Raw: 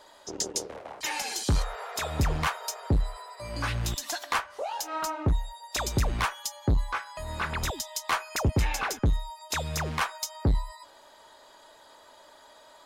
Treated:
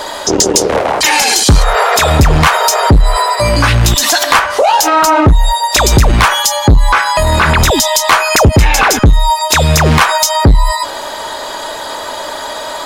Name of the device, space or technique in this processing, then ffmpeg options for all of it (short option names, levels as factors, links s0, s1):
loud club master: -af "acompressor=threshold=0.0501:ratio=2.5,asoftclip=type=hard:threshold=0.0708,alimiter=level_in=42.2:limit=0.891:release=50:level=0:latency=1,volume=0.891"